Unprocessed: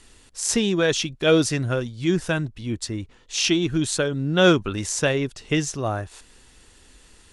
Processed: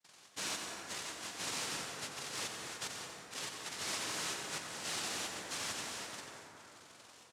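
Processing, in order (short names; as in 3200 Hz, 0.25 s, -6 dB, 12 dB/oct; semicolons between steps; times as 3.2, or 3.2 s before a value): nonlinear frequency compression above 2400 Hz 4:1; FFT band-reject 160–3200 Hz; gate with hold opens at -44 dBFS; comb 4.3 ms, depth 70%; overloaded stage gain 32 dB; noise vocoder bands 1; echo 90 ms -9 dB; plate-style reverb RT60 3.4 s, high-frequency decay 0.3×, pre-delay 0.12 s, DRR 1.5 dB; gain -6 dB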